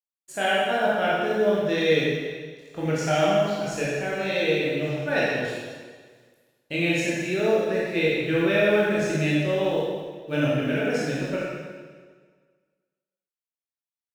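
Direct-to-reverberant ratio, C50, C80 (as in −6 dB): −7.5 dB, −2.5 dB, −0.5 dB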